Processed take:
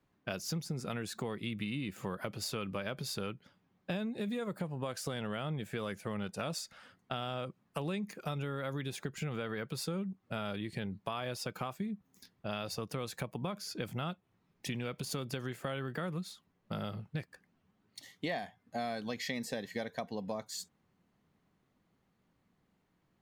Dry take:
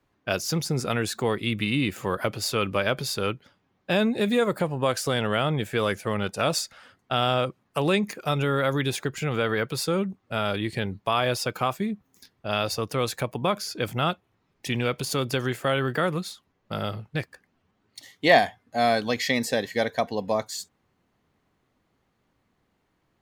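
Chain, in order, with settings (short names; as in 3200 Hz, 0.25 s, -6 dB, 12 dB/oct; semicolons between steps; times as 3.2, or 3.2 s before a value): bell 180 Hz +7.5 dB 0.71 oct; compressor 5:1, threshold -29 dBFS, peak gain reduction 15.5 dB; gain -6 dB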